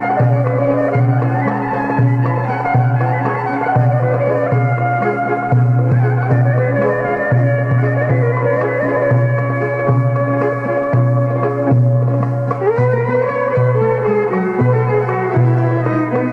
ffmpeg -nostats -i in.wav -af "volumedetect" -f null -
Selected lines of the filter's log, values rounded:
mean_volume: -14.1 dB
max_volume: -1.6 dB